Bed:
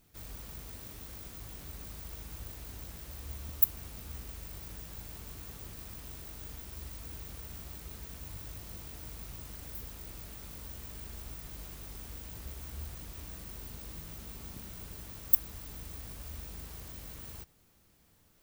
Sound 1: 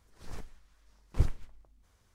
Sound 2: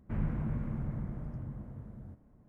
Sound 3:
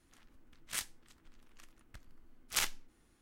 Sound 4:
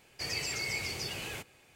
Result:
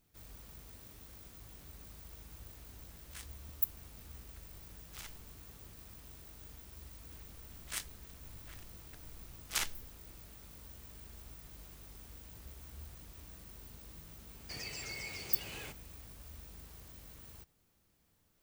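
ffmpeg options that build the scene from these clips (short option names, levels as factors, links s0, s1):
-filter_complex "[3:a]asplit=2[s0][s1];[0:a]volume=0.422[s2];[s0]alimiter=level_in=1.19:limit=0.0631:level=0:latency=1:release=246,volume=0.841[s3];[s1]asplit=2[s4][s5];[s5]adelay=758,volume=0.316,highshelf=f=4000:g=-17.1[s6];[s4][s6]amix=inputs=2:normalize=0[s7];[4:a]alimiter=level_in=1.5:limit=0.0631:level=0:latency=1:release=193,volume=0.668[s8];[s3]atrim=end=3.21,asetpts=PTS-STARTPTS,volume=0.335,afade=t=in:d=0.004:c=hsin,afade=t=out:st=3.206:d=0.004:c=hsin,adelay=2420[s9];[s7]atrim=end=3.21,asetpts=PTS-STARTPTS,volume=0.794,afade=t=in:d=0.004:c=hsin,afade=t=out:st=3.206:d=0.004:c=hsin,adelay=6990[s10];[s8]atrim=end=1.75,asetpts=PTS-STARTPTS,volume=0.501,afade=t=in:d=0.004:c=hsin,afade=t=out:st=1.746:d=0.004:c=hsin,adelay=14300[s11];[s2][s9][s10][s11]amix=inputs=4:normalize=0"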